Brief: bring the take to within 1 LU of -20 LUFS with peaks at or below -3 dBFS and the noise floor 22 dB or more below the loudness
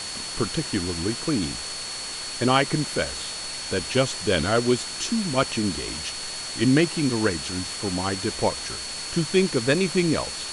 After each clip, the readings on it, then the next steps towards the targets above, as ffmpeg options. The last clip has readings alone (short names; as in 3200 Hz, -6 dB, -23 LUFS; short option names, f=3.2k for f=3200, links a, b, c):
steady tone 4400 Hz; tone level -34 dBFS; noise floor -33 dBFS; noise floor target -47 dBFS; loudness -24.5 LUFS; peak -4.0 dBFS; loudness target -20.0 LUFS
-> -af "bandreject=f=4.4k:w=30"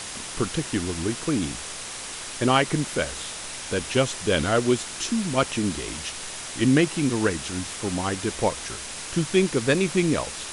steady tone none; noise floor -36 dBFS; noise floor target -47 dBFS
-> -af "afftdn=nr=11:nf=-36"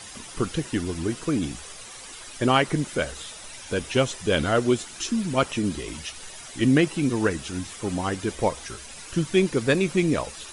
noise floor -42 dBFS; noise floor target -47 dBFS
-> -af "afftdn=nr=6:nf=-42"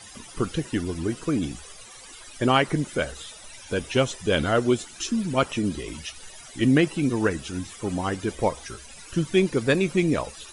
noise floor -45 dBFS; noise floor target -47 dBFS
-> -af "afftdn=nr=6:nf=-45"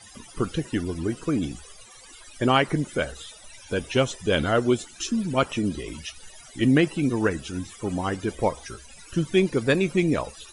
noise floor -48 dBFS; loudness -25.5 LUFS; peak -4.5 dBFS; loudness target -20.0 LUFS
-> -af "volume=5.5dB,alimiter=limit=-3dB:level=0:latency=1"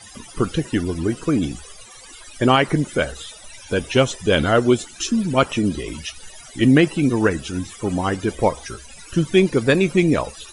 loudness -20.0 LUFS; peak -3.0 dBFS; noise floor -42 dBFS